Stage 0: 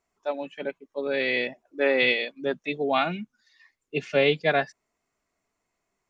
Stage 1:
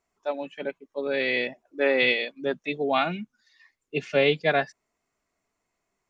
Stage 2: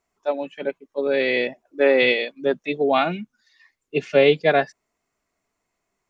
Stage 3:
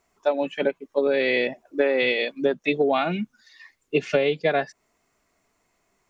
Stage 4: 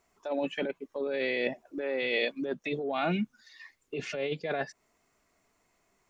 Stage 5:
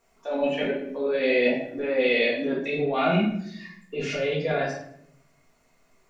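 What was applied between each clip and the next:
nothing audible
dynamic EQ 430 Hz, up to +5 dB, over -33 dBFS, Q 0.76; gain +2 dB
compressor 16:1, threshold -25 dBFS, peak gain reduction 15.5 dB; gain +7.5 dB
negative-ratio compressor -25 dBFS, ratio -1; gain -5.5 dB
shoebox room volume 140 m³, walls mixed, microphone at 1.7 m

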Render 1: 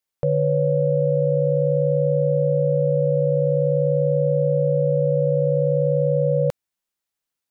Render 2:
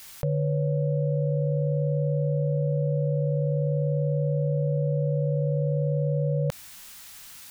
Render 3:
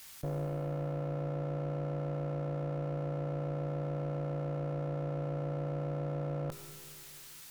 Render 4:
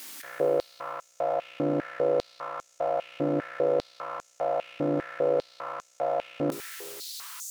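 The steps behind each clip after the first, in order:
bell 440 Hz -11 dB 1.7 oct; fast leveller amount 70%
one-sided clip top -37 dBFS, bottom -20 dBFS; Schroeder reverb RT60 2.5 s, combs from 26 ms, DRR 8.5 dB; gain -6 dB
stepped high-pass 5 Hz 280–6700 Hz; gain +8.5 dB

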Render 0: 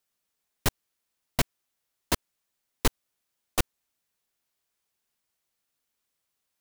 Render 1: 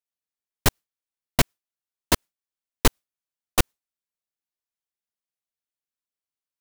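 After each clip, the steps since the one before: gate with hold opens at -30 dBFS; gain +6 dB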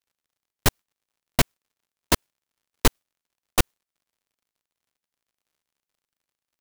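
crackle 80/s -60 dBFS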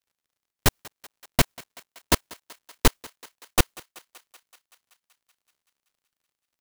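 thinning echo 0.19 s, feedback 72%, high-pass 420 Hz, level -21 dB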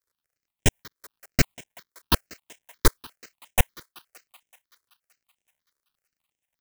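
step phaser 8.4 Hz 760–4400 Hz; gain +1.5 dB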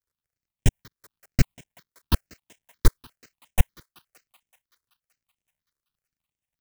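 tone controls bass +11 dB, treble 0 dB; gain -7 dB

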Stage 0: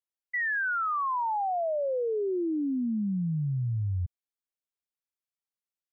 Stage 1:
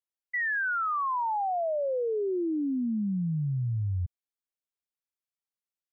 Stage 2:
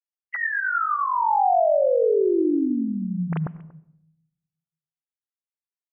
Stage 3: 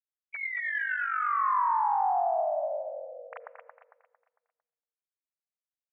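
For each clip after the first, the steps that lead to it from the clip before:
nothing audible
sine-wave speech; echo 0.235 s -21.5 dB; on a send at -19 dB: reverb RT60 0.75 s, pre-delay 72 ms; on the sum: gain +6.5 dB
tracing distortion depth 0.05 ms; on a send: feedback echo 0.226 s, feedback 38%, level -6 dB; on the sum: mistuned SSB +310 Hz 290–2200 Hz; gain -8 dB

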